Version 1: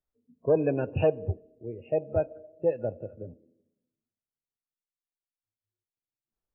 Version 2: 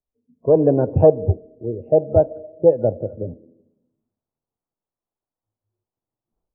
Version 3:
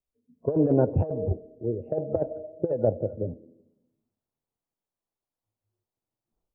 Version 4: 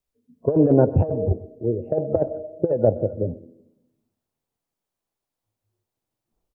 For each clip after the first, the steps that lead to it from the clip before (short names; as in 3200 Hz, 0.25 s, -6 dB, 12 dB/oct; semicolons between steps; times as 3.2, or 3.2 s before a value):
AGC gain up to 14 dB; LPF 1000 Hz 24 dB/oct
negative-ratio compressor -16 dBFS, ratio -0.5; gain -5.5 dB
echo 0.126 s -20.5 dB; gain +5.5 dB